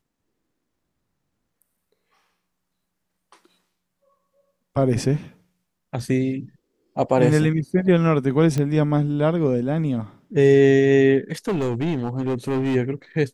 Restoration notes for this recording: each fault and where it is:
8.58 pop -13 dBFS
11.48–12.76 clipped -19 dBFS

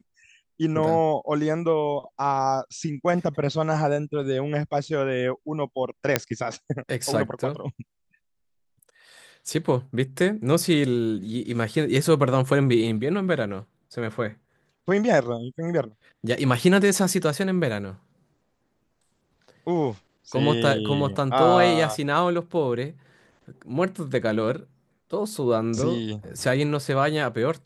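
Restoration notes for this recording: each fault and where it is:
6.16 pop -3 dBFS

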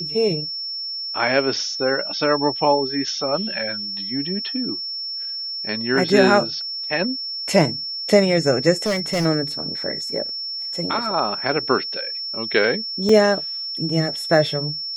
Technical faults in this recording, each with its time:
tone 5400 Hz -26 dBFS
8.86–9.26 clipped -17 dBFS
13.09 gap 3.3 ms

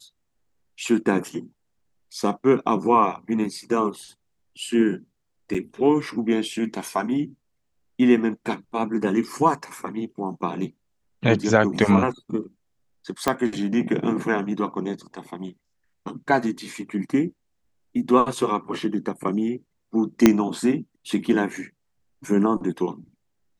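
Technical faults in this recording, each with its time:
5.54–5.55 gap 5.6 ms
13.28 pop -6 dBFS
20.26 pop 0 dBFS

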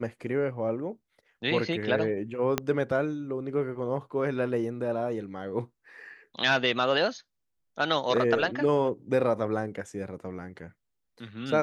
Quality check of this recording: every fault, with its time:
2.58 pop -10 dBFS

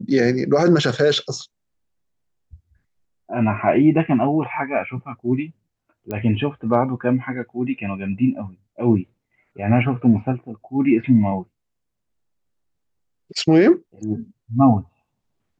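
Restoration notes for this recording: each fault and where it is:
6.11 pop -15 dBFS

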